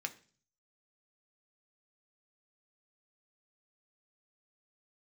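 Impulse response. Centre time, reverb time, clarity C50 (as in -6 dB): 5 ms, 0.40 s, 17.0 dB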